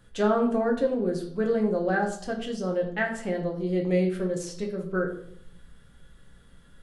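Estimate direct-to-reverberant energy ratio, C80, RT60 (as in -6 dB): 0.5 dB, 11.5 dB, 0.70 s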